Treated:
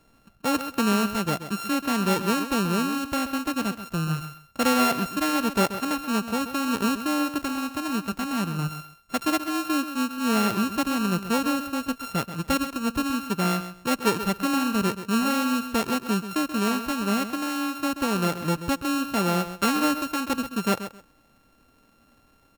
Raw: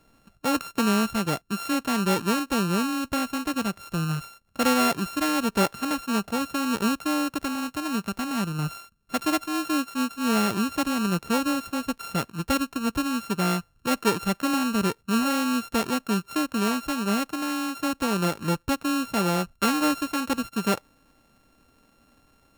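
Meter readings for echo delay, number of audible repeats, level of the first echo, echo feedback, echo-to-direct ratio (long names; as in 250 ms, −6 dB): 132 ms, 2, −11.5 dB, 19%, −11.5 dB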